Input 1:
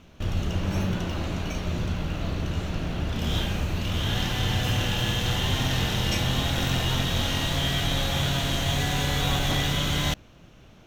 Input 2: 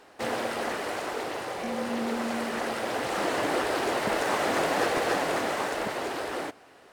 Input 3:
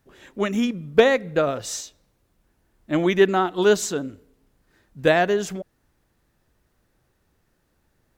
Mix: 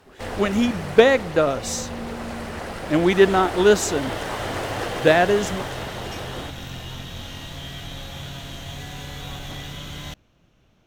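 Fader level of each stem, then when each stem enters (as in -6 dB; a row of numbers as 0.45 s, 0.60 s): -9.5 dB, -2.5 dB, +2.0 dB; 0.00 s, 0.00 s, 0.00 s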